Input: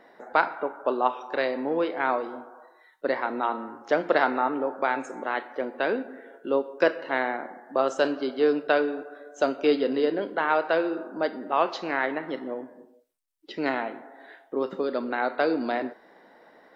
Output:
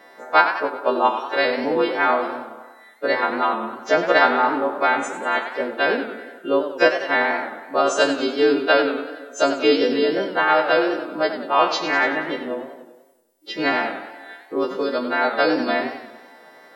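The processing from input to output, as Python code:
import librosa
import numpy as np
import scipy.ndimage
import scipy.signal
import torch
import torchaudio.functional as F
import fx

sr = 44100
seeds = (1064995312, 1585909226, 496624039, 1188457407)

y = fx.freq_snap(x, sr, grid_st=2)
y = fx.echo_warbled(y, sr, ms=95, feedback_pct=54, rate_hz=2.8, cents=158, wet_db=-10.5)
y = F.gain(torch.from_numpy(y), 5.5).numpy()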